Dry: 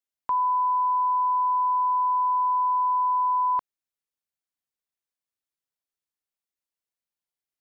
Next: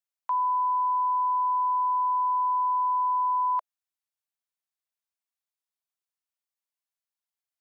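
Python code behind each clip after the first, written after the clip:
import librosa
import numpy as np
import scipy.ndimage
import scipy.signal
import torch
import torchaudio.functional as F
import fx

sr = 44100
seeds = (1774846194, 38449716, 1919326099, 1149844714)

y = scipy.signal.sosfilt(scipy.signal.cheby1(5, 1.0, 620.0, 'highpass', fs=sr, output='sos'), x)
y = F.gain(torch.from_numpy(y), -2.0).numpy()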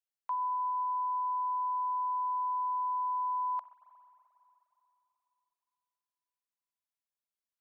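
y = fx.rev_spring(x, sr, rt60_s=3.4, pass_ms=(44, 59), chirp_ms=35, drr_db=11.0)
y = F.gain(torch.from_numpy(y), -6.5).numpy()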